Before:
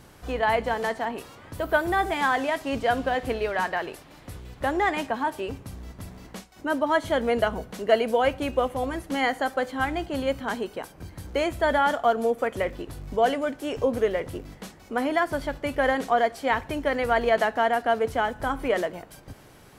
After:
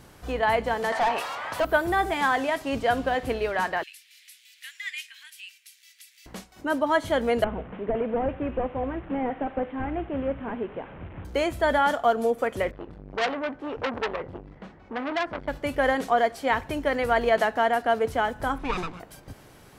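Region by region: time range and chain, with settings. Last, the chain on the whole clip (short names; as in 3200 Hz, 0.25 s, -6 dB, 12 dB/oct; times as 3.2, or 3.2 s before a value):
0.92–1.65 resonant low shelf 510 Hz -10 dB, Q 1.5 + overdrive pedal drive 24 dB, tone 2200 Hz, clips at -15.5 dBFS
3.83–6.26 steep high-pass 2100 Hz + mismatched tape noise reduction encoder only
7.44–11.25 delta modulation 16 kbps, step -35.5 dBFS + LPF 1200 Hz 6 dB/oct
12.71–15.48 LPF 2000 Hz + core saturation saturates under 2500 Hz
18.58–19 minimum comb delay 0.8 ms + air absorption 66 m + mismatched tape noise reduction decoder only
whole clip: dry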